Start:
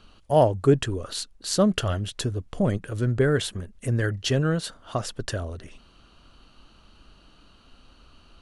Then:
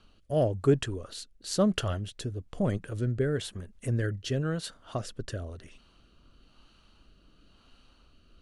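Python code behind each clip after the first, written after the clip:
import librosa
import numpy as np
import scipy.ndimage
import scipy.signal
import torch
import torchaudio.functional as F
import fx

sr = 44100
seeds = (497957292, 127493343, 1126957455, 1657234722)

y = fx.rotary(x, sr, hz=1.0)
y = y * librosa.db_to_amplitude(-4.0)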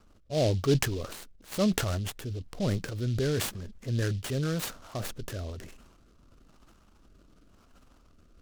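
y = fx.env_lowpass(x, sr, base_hz=1600.0, full_db=-27.5)
y = fx.transient(y, sr, attack_db=-4, sustain_db=8)
y = fx.noise_mod_delay(y, sr, seeds[0], noise_hz=3800.0, depth_ms=0.064)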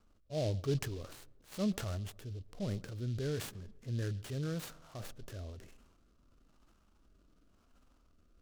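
y = fx.echo_filtered(x, sr, ms=136, feedback_pct=55, hz=1100.0, wet_db=-23.5)
y = fx.hpss(y, sr, part='percussive', gain_db=-6)
y = y * librosa.db_to_amplitude(-7.0)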